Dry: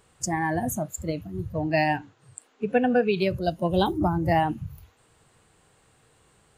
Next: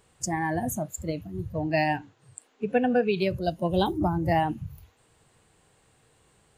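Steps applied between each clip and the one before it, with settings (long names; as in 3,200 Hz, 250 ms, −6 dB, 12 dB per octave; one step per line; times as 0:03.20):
parametric band 1,300 Hz −3 dB 0.49 octaves
level −1.5 dB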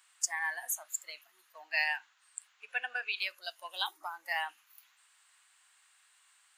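high-pass filter 1,200 Hz 24 dB per octave
level +1 dB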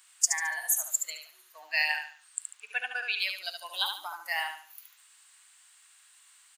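high-shelf EQ 3,200 Hz +9 dB
on a send: repeating echo 72 ms, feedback 33%, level −6 dB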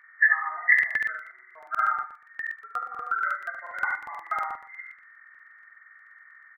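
hearing-aid frequency compression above 1,100 Hz 4 to 1
double-tracking delay 19 ms −7.5 dB
regular buffer underruns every 0.12 s, samples 2,048, repeat, from 0:00.74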